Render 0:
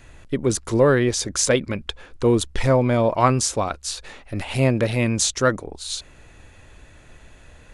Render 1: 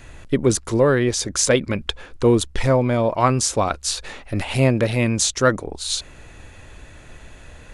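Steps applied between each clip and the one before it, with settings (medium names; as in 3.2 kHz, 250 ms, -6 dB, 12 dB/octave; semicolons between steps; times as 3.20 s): gain riding within 3 dB 0.5 s; trim +2 dB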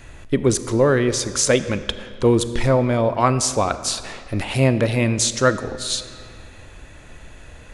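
reverberation RT60 2.3 s, pre-delay 4 ms, DRR 12 dB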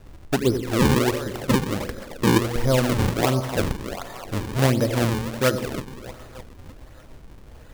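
boxcar filter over 12 samples; two-band feedback delay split 570 Hz, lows 84 ms, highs 306 ms, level -9 dB; decimation with a swept rate 38×, swing 160% 1.4 Hz; trim -3 dB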